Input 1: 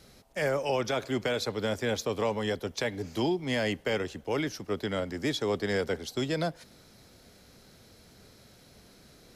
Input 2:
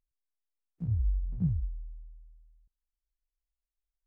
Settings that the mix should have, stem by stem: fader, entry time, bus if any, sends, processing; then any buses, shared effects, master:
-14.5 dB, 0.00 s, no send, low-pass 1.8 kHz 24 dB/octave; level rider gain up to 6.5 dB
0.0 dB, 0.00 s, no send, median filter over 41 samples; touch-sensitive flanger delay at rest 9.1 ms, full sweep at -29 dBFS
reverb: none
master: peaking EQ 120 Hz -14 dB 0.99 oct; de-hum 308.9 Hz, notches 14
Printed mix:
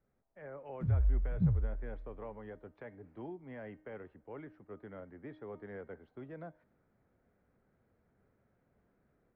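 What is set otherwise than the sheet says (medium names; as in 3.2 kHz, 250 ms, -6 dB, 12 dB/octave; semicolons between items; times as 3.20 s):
stem 1 -14.5 dB -> -23.0 dB; master: missing peaking EQ 120 Hz -14 dB 0.99 oct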